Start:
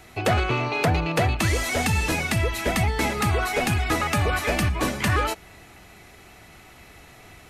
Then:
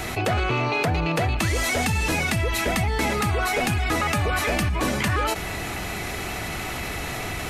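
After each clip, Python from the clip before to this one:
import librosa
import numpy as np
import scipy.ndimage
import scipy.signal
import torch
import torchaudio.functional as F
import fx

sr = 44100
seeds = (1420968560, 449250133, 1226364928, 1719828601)

y = fx.env_flatten(x, sr, amount_pct=70)
y = y * 10.0 ** (-3.0 / 20.0)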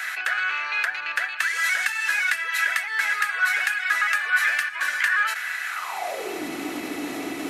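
y = fx.filter_sweep_highpass(x, sr, from_hz=1600.0, to_hz=290.0, start_s=5.69, end_s=6.44, q=7.5)
y = y * 10.0 ** (-4.0 / 20.0)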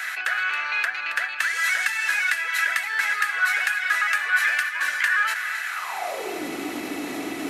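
y = x + 10.0 ** (-11.0 / 20.0) * np.pad(x, (int(273 * sr / 1000.0), 0))[:len(x)]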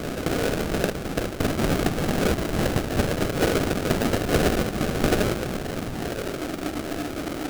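y = fx.doubler(x, sr, ms=13.0, db=-10.5)
y = fx.sample_hold(y, sr, seeds[0], rate_hz=1000.0, jitter_pct=20)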